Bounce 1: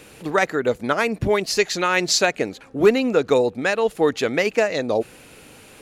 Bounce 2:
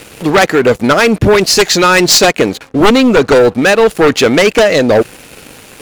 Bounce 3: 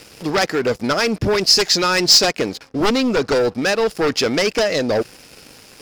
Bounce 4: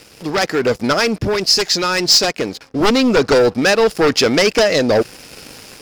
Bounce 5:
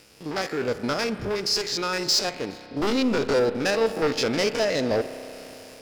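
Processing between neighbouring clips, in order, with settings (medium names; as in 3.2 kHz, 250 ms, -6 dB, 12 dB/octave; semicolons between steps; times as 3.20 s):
one-sided wavefolder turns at -15.5 dBFS; waveshaping leveller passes 3; trim +5 dB
peaking EQ 5.1 kHz +12.5 dB 0.34 oct; trim -10 dB
level rider gain up to 8 dB; trim -1 dB
spectrogram pixelated in time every 50 ms; spring tank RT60 3.5 s, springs 31 ms, chirp 35 ms, DRR 11 dB; trim -8.5 dB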